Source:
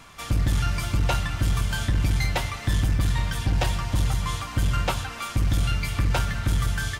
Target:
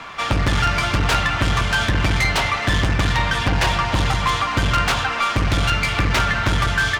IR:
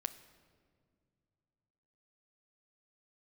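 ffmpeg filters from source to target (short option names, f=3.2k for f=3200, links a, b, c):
-filter_complex "[0:a]acrossover=split=130[a][b];[b]aeval=exprs='(mod(11.2*val(0)+1,2)-1)/11.2':c=same[c];[a][c]amix=inputs=2:normalize=0,adynamicsmooth=sensitivity=6.5:basefreq=5.5k,acrusher=bits=11:mix=0:aa=0.000001,asplit=2[d][e];[e]highpass=f=720:p=1,volume=16dB,asoftclip=type=tanh:threshold=-13dB[f];[d][f]amix=inputs=2:normalize=0,lowpass=f=2.6k:p=1,volume=-6dB,volume=6.5dB"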